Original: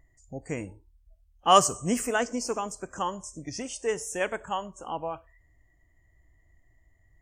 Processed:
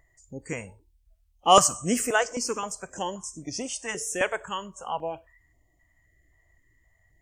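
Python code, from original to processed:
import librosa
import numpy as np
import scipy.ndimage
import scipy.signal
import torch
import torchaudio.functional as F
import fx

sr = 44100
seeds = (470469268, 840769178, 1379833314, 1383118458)

y = fx.low_shelf(x, sr, hz=170.0, db=-9.0)
y = fx.filter_held_notch(y, sr, hz=3.8, low_hz=240.0, high_hz=1600.0)
y = y * librosa.db_to_amplitude(4.5)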